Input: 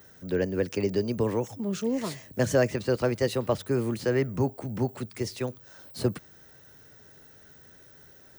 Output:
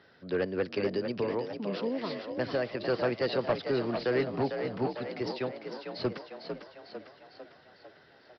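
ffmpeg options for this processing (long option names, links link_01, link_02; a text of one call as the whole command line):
ffmpeg -i in.wav -filter_complex "[0:a]highpass=frequency=330:poles=1,asettb=1/sr,asplit=3[link_01][link_02][link_03];[link_01]atrim=end=0.964[link_04];[link_02]atrim=start=0.96:end=2.82,asetpts=PTS-STARTPTS,afade=type=in:duration=0.004:curve=qsin,afade=type=out:start_time=1.856:duration=0.004:curve=qsin,acompressor=threshold=-29dB:ratio=2.5[link_05];[link_03]atrim=start=2.816[link_06];[link_04][link_05]acrossfade=duration=0.004:curve1=hsin:curve2=qsin[link_07];[link_07][link_06]acrossfade=duration=0.004:curve1=qsin:curve2=hsin,asoftclip=type=hard:threshold=-22dB,asplit=2[link_08][link_09];[link_09]asplit=7[link_10][link_11][link_12][link_13][link_14][link_15][link_16];[link_10]adelay=450,afreqshift=50,volume=-7dB[link_17];[link_11]adelay=900,afreqshift=100,volume=-12dB[link_18];[link_12]adelay=1350,afreqshift=150,volume=-17.1dB[link_19];[link_13]adelay=1800,afreqshift=200,volume=-22.1dB[link_20];[link_14]adelay=2250,afreqshift=250,volume=-27.1dB[link_21];[link_15]adelay=2700,afreqshift=300,volume=-32.2dB[link_22];[link_16]adelay=3150,afreqshift=350,volume=-37.2dB[link_23];[link_17][link_18][link_19][link_20][link_21][link_22][link_23]amix=inputs=7:normalize=0[link_24];[link_08][link_24]amix=inputs=2:normalize=0,aresample=11025,aresample=44100" out.wav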